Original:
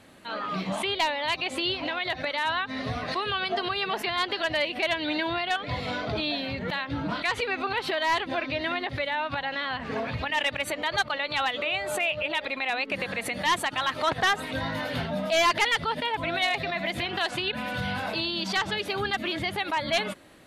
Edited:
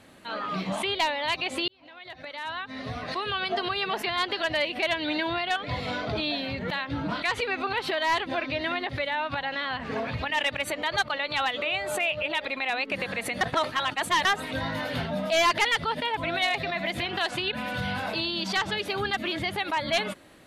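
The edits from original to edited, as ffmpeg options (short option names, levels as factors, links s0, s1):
-filter_complex "[0:a]asplit=4[s0][s1][s2][s3];[s0]atrim=end=1.68,asetpts=PTS-STARTPTS,afade=t=out:st=1.676:d=0.004:c=hsin[s4];[s1]atrim=start=1.68:end=13.412,asetpts=PTS-STARTPTS,afade=t=in:d=1.84[s5];[s2]atrim=start=13.408:end=14.252,asetpts=PTS-STARTPTS,areverse[s6];[s3]atrim=start=14.248[s7];[s4][s5]concat=n=2:v=0:a=1[s8];[s8][s6]acrossfade=d=0.004:c1=hsin:c2=hsin[s9];[s9][s7]acrossfade=d=0.004:c1=hsin:c2=hsin"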